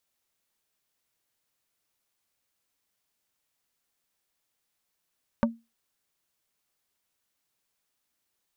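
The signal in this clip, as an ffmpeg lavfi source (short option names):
-f lavfi -i "aevalsrc='0.141*pow(10,-3*t/0.24)*sin(2*PI*230*t)+0.106*pow(10,-3*t/0.08)*sin(2*PI*575*t)+0.0794*pow(10,-3*t/0.045)*sin(2*PI*920*t)+0.0596*pow(10,-3*t/0.035)*sin(2*PI*1150*t)+0.0447*pow(10,-3*t/0.025)*sin(2*PI*1495*t)':d=0.45:s=44100"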